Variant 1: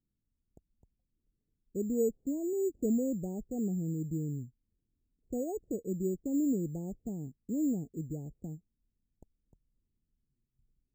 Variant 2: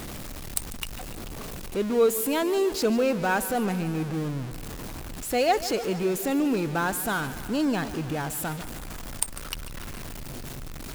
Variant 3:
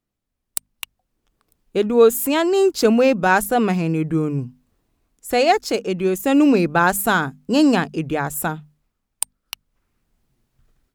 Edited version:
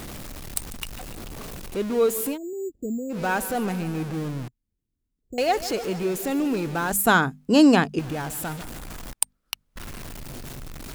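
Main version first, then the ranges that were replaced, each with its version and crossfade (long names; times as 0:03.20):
2
0:02.33–0:03.14: punch in from 1, crossfade 0.10 s
0:04.48–0:05.38: punch in from 1
0:06.91–0:07.99: punch in from 3
0:09.13–0:09.76: punch in from 3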